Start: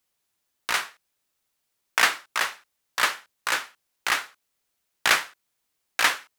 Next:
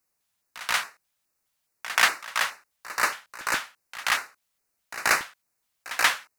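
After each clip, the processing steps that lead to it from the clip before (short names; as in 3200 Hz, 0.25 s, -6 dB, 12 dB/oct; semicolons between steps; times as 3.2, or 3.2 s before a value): LFO notch square 2.4 Hz 360–3300 Hz; pre-echo 0.132 s -15 dB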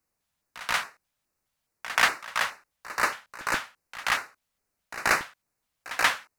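tilt -1.5 dB/oct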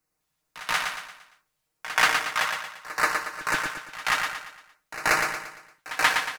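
comb 6.5 ms, depth 52%; on a send: feedback echo 0.115 s, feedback 43%, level -5 dB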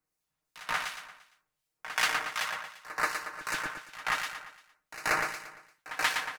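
harmonic tremolo 2.7 Hz, depth 50%, crossover 2300 Hz; gain -4 dB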